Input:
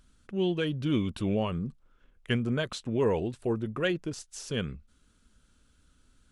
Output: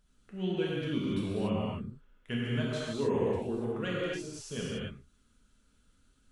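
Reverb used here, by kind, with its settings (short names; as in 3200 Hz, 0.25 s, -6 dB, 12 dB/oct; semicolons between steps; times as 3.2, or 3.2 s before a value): non-linear reverb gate 0.31 s flat, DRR -6.5 dB; gain -10 dB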